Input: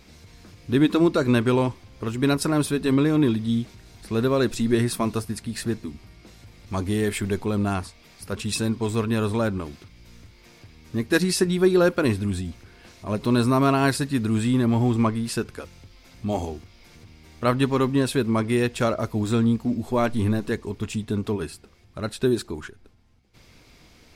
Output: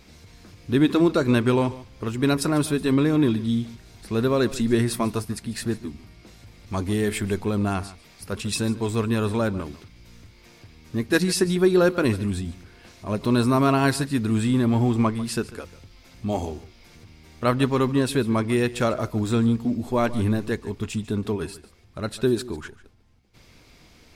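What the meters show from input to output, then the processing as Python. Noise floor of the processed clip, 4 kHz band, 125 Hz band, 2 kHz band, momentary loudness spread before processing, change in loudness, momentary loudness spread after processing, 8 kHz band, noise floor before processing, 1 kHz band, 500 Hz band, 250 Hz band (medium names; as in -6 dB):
-53 dBFS, 0.0 dB, 0.0 dB, 0.0 dB, 14 LU, 0.0 dB, 14 LU, 0.0 dB, -53 dBFS, 0.0 dB, 0.0 dB, 0.0 dB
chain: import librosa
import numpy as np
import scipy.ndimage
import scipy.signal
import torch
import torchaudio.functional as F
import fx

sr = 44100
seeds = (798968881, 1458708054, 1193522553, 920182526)

y = x + fx.echo_single(x, sr, ms=146, db=-17.5, dry=0)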